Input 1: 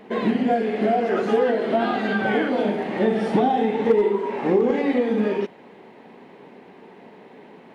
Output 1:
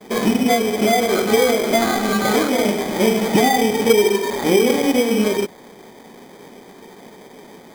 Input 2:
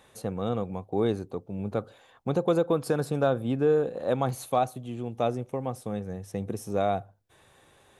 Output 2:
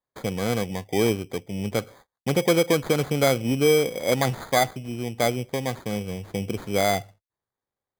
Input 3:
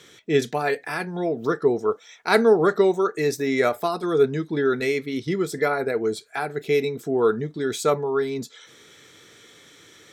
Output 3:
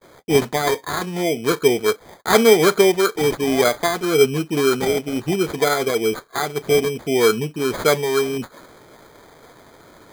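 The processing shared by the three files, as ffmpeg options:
-af "agate=range=0.0158:threshold=0.00282:ratio=16:detection=peak,acrusher=samples=16:mix=1:aa=0.000001,volume=1.58"

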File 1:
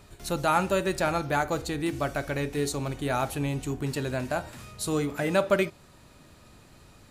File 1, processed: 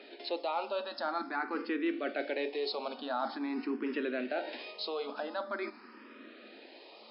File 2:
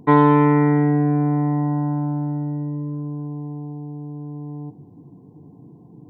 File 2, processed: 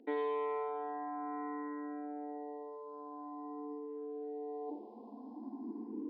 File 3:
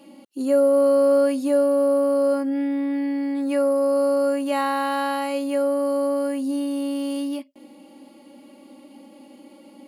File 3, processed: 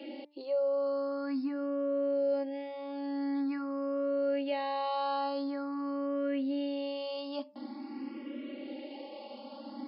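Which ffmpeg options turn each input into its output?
-filter_complex "[0:a]areverse,acompressor=threshold=0.0282:ratio=6,areverse,afftfilt=real='re*between(b*sr/4096,210,5300)':imag='im*between(b*sr/4096,210,5300)':win_size=4096:overlap=0.75,acrossover=split=340[s0][s1];[s0]acompressor=threshold=0.00891:ratio=2.5[s2];[s2][s1]amix=inputs=2:normalize=0,bandreject=f=294.1:t=h:w=4,bandreject=f=588.2:t=h:w=4,bandreject=f=882.3:t=h:w=4,bandreject=f=1176.4:t=h:w=4,bandreject=f=1470.5:t=h:w=4,bandreject=f=1764.6:t=h:w=4,bandreject=f=2058.7:t=h:w=4,bandreject=f=2352.8:t=h:w=4,bandreject=f=2646.9:t=h:w=4,asplit=2[s3][s4];[s4]alimiter=level_in=2.99:limit=0.0631:level=0:latency=1:release=140,volume=0.335,volume=1.33[s5];[s3][s5]amix=inputs=2:normalize=0,asplit=2[s6][s7];[s7]afreqshift=0.46[s8];[s6][s8]amix=inputs=2:normalize=1"

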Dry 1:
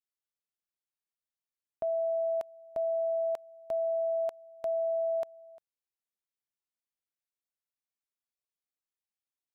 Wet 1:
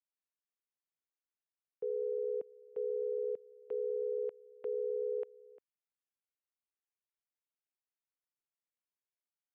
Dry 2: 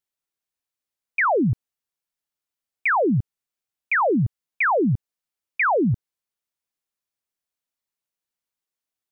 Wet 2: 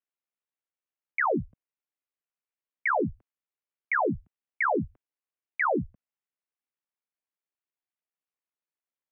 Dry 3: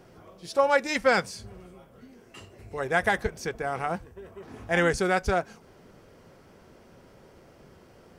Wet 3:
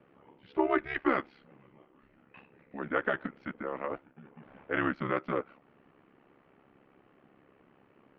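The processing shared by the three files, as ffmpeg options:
-af "highpass=f=400:t=q:w=0.5412,highpass=f=400:t=q:w=1.307,lowpass=f=3100:t=q:w=0.5176,lowpass=f=3100:t=q:w=0.7071,lowpass=f=3100:t=q:w=1.932,afreqshift=-200,aeval=exprs='val(0)*sin(2*PI*34*n/s)':c=same,volume=0.75"

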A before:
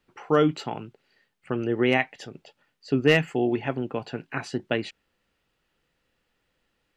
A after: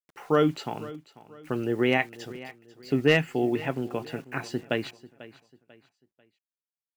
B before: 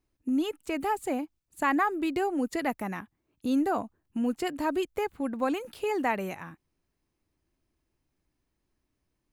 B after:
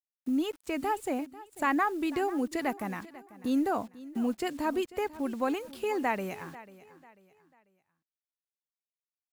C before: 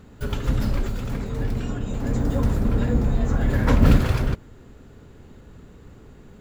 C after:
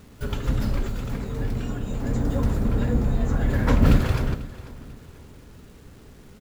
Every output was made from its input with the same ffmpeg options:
-filter_complex "[0:a]acrusher=bits=8:mix=0:aa=0.000001,asplit=2[s0][s1];[s1]aecho=0:1:493|986|1479:0.126|0.0441|0.0154[s2];[s0][s2]amix=inputs=2:normalize=0,volume=0.841"

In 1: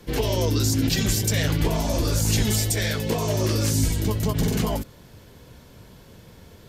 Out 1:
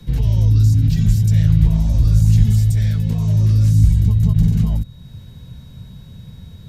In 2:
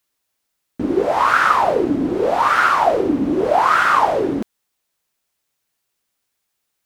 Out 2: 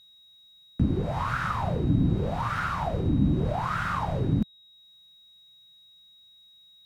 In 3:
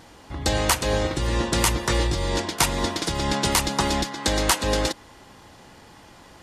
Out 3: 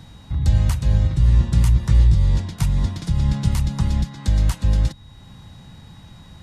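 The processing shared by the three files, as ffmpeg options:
-filter_complex "[0:a]acrossover=split=150[s0][s1];[s1]acompressor=threshold=0.00355:ratio=1.5[s2];[s0][s2]amix=inputs=2:normalize=0,aeval=exprs='val(0)+0.00282*sin(2*PI*3800*n/s)':c=same,lowshelf=f=240:t=q:w=1.5:g=13,volume=0.794"

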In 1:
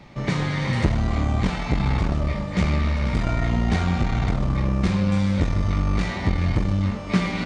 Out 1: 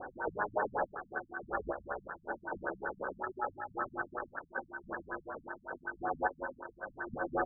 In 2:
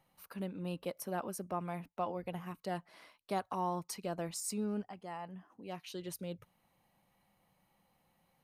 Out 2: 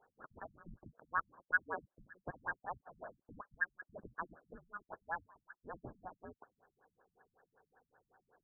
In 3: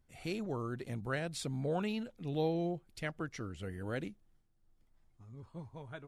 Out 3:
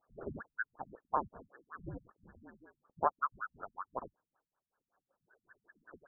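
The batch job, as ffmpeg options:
-af "acompressor=threshold=0.0282:ratio=10,lowpass=f=2300:t=q:w=0.5098,lowpass=f=2300:t=q:w=0.6013,lowpass=f=2300:t=q:w=0.9,lowpass=f=2300:t=q:w=2.563,afreqshift=-2700,afftfilt=real='re*lt(b*sr/1024,210*pow(1800/210,0.5+0.5*sin(2*PI*5.3*pts/sr)))':imag='im*lt(b*sr/1024,210*pow(1800/210,0.5+0.5*sin(2*PI*5.3*pts/sr)))':win_size=1024:overlap=0.75,volume=5.31"

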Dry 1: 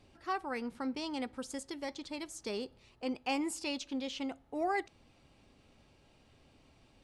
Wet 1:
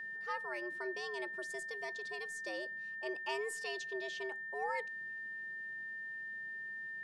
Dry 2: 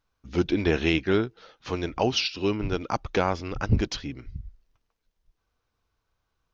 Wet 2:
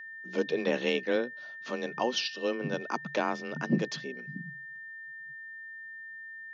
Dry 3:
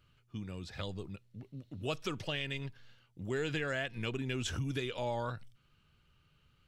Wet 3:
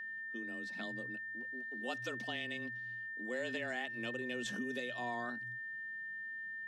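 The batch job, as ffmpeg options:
-af "afreqshift=120,aeval=exprs='val(0)+0.0158*sin(2*PI*1800*n/s)':c=same,volume=0.531"

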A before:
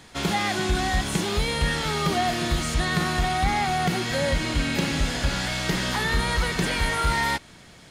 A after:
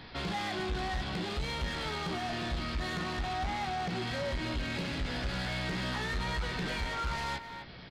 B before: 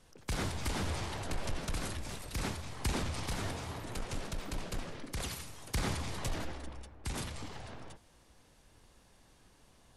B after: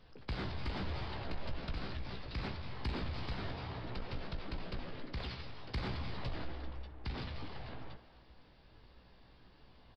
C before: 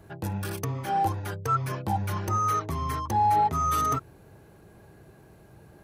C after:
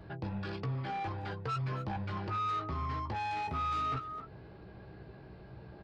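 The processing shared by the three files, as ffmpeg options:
-filter_complex "[0:a]aresample=11025,aresample=44100,asplit=2[s0][s1];[s1]adelay=260,highpass=300,lowpass=3400,asoftclip=type=hard:threshold=0.0841,volume=0.178[s2];[s0][s2]amix=inputs=2:normalize=0,asoftclip=type=tanh:threshold=0.0501,asplit=2[s3][s4];[s4]adelay=16,volume=0.422[s5];[s3][s5]amix=inputs=2:normalize=0,acompressor=threshold=0.00562:ratio=1.5,lowshelf=f=150:g=3"

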